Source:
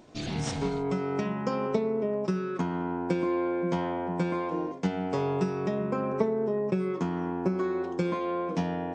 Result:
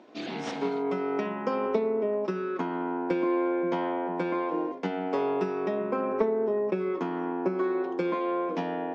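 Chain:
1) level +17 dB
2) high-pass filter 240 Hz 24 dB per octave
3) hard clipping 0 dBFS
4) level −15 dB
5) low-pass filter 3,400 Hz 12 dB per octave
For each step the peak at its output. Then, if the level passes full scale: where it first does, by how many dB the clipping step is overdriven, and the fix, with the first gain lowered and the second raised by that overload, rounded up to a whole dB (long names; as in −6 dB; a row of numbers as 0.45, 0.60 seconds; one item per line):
+6.0, +3.5, 0.0, −15.0, −15.0 dBFS
step 1, 3.5 dB
step 1 +13 dB, step 4 −11 dB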